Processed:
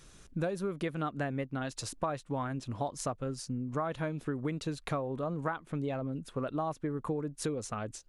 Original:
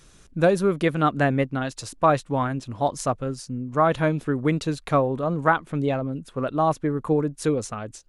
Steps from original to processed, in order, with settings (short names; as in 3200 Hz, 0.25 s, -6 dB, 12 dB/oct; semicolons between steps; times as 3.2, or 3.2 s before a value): compressor 6:1, threshold -28 dBFS, peak gain reduction 14 dB; gain -3 dB